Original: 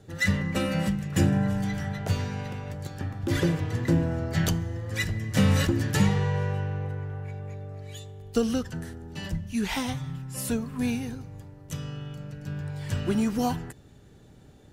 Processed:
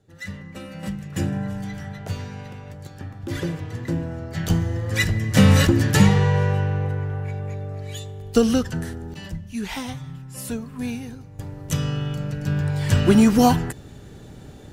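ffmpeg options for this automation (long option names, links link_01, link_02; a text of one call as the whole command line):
ffmpeg -i in.wav -af "asetnsamples=nb_out_samples=441:pad=0,asendcmd='0.83 volume volume -2.5dB;4.5 volume volume 7.5dB;9.14 volume volume -1dB;11.39 volume volume 11dB',volume=-10dB" out.wav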